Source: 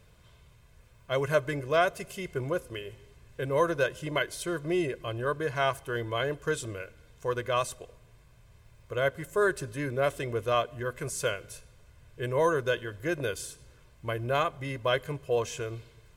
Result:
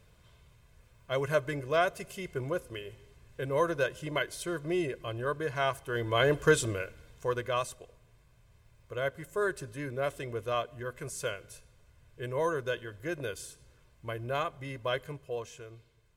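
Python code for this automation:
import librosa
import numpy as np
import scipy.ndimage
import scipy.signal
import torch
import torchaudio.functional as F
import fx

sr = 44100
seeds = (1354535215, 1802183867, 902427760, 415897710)

y = fx.gain(x, sr, db=fx.line((5.85, -2.5), (6.39, 7.5), (7.77, -5.0), (15.02, -5.0), (15.59, -12.0)))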